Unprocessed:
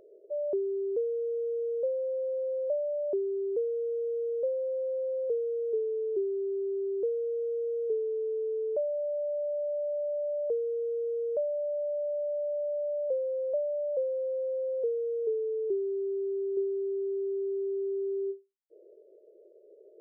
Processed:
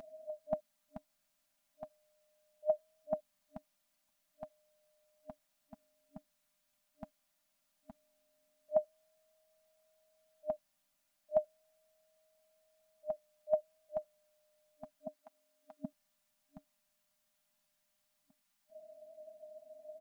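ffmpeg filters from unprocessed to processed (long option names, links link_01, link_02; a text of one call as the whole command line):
ffmpeg -i in.wav -filter_complex "[0:a]asettb=1/sr,asplit=3[link_01][link_02][link_03];[link_01]atrim=end=15.074[link_04];[link_02]atrim=start=15.07:end=15.85,asetpts=PTS-STARTPTS,afade=type=in:duration=0.004:curve=qsin,afade=type=out:start_time=0.776:duration=0.004:curve=qsin,highpass=frequency=390:width=0.5412,highpass=frequency=390:width=1.3066[link_05];[link_03]atrim=start=15.846[link_06];[link_04][link_05]acrossfade=duration=0.004:curve1=hsin:curve2=qsin[link_07];[link_07][link_06]acrossfade=duration=0.004:curve1=qsin:curve2=hsin,afftfilt=real='re*(1-between(b*sr/4096,290,610))':imag='im*(1-between(b*sr/4096,290,610))':win_size=4096:overlap=0.75,aecho=1:1:5:0.46,volume=15.5dB" out.wav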